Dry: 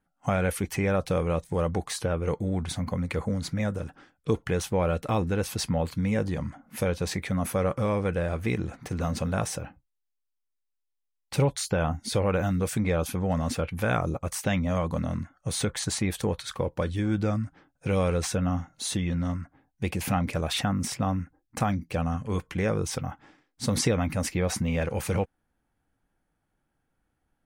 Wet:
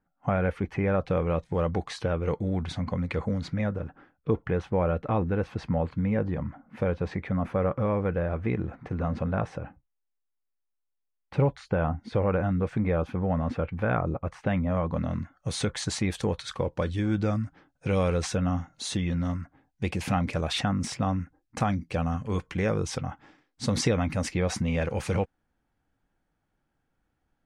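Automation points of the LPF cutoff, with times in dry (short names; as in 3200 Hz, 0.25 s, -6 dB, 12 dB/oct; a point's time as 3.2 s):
0.77 s 1900 Hz
1.78 s 4100 Hz
3.39 s 4100 Hz
3.86 s 1800 Hz
14.8 s 1800 Hz
15.05 s 3500 Hz
15.54 s 6900 Hz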